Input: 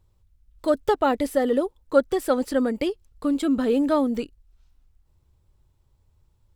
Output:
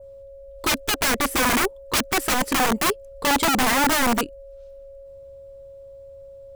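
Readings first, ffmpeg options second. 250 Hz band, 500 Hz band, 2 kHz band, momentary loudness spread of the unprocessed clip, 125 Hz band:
-2.5 dB, -5.5 dB, +14.0 dB, 8 LU, n/a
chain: -af "aeval=exprs='val(0)+0.00501*sin(2*PI*550*n/s)':c=same,aeval=exprs='(mod(10.6*val(0)+1,2)-1)/10.6':c=same,adynamicequalizer=threshold=0.00631:dfrequency=4000:dqfactor=1.3:tfrequency=4000:tqfactor=1.3:attack=5:release=100:ratio=0.375:range=3:mode=cutabove:tftype=bell,volume=6dB"

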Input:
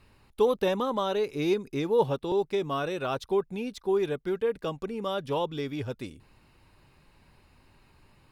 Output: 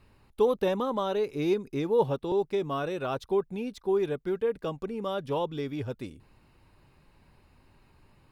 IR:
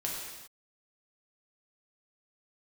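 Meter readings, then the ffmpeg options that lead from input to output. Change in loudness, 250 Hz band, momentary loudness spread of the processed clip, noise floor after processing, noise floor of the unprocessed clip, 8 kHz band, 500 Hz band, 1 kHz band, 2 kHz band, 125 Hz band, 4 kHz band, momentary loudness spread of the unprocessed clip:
-0.5 dB, 0.0 dB, 8 LU, -63 dBFS, -63 dBFS, n/a, -0.5 dB, -1.5 dB, -3.0 dB, 0.0 dB, -4.0 dB, 8 LU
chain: -af "lowpass=f=1.2k:p=1,aemphasis=mode=production:type=75kf"

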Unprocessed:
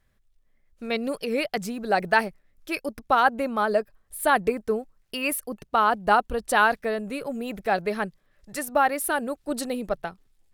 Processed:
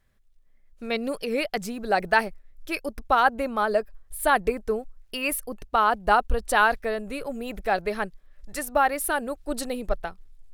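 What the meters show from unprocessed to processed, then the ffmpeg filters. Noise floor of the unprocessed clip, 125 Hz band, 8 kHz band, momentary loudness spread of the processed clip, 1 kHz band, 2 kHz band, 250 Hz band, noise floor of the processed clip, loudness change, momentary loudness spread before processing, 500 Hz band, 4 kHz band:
-67 dBFS, +0.5 dB, 0.0 dB, 12 LU, 0.0 dB, 0.0 dB, -2.0 dB, -57 dBFS, -0.5 dB, 11 LU, -0.5 dB, 0.0 dB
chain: -af "asubboost=boost=7.5:cutoff=53"

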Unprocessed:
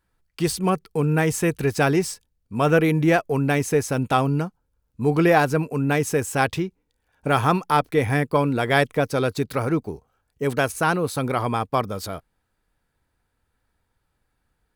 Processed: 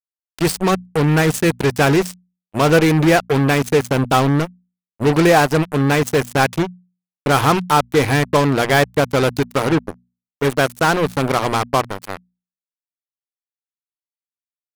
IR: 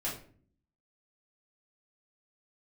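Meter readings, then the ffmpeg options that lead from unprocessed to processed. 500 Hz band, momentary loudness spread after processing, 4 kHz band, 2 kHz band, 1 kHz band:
+5.0 dB, 9 LU, +8.5 dB, +5.5 dB, +5.0 dB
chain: -af "acontrast=73,acrusher=bits=2:mix=0:aa=0.5,bandreject=f=60:t=h:w=6,bandreject=f=120:t=h:w=6,bandreject=f=180:t=h:w=6,bandreject=f=240:t=h:w=6,volume=-1dB"

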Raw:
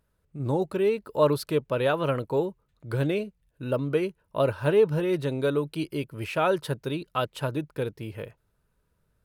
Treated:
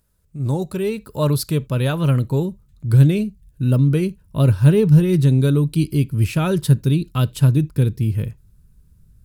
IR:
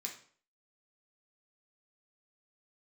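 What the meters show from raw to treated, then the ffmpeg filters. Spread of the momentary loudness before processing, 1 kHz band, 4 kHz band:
11 LU, -1.5 dB, +5.5 dB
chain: -filter_complex "[0:a]bass=f=250:g=6,treble=f=4k:g=12,asplit=2[a][b];[1:a]atrim=start_sample=2205,atrim=end_sample=3969[c];[b][c]afir=irnorm=-1:irlink=0,volume=-13.5dB[d];[a][d]amix=inputs=2:normalize=0,asubboost=boost=7.5:cutoff=220"

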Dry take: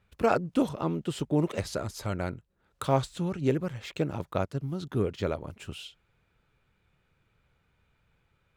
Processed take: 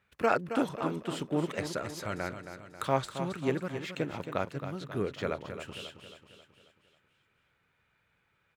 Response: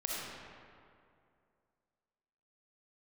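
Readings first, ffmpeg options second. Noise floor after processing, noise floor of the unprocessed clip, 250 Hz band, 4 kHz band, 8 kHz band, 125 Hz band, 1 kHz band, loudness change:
-74 dBFS, -72 dBFS, -4.0 dB, -1.0 dB, -2.0 dB, -6.5 dB, -0.5 dB, -3.5 dB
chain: -af "highpass=f=180:p=1,equalizer=f=1.8k:t=o:w=1.1:g=6.5,aecho=1:1:270|540|810|1080|1350|1620:0.335|0.171|0.0871|0.0444|0.0227|0.0116,volume=-3dB"

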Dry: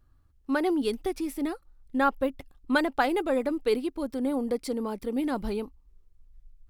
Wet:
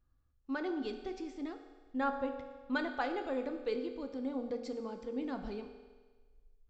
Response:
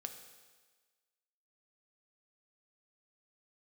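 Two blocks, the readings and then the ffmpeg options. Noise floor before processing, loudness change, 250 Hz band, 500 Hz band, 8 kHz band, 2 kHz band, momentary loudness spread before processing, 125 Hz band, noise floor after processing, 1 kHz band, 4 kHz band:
-61 dBFS, -9.5 dB, -9.5 dB, -9.5 dB, under -15 dB, -9.0 dB, 9 LU, n/a, -71 dBFS, -9.5 dB, -10.5 dB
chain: -filter_complex "[1:a]atrim=start_sample=2205[a];[0:a][a]afir=irnorm=-1:irlink=0,aresample=16000,aresample=44100,volume=-7dB"

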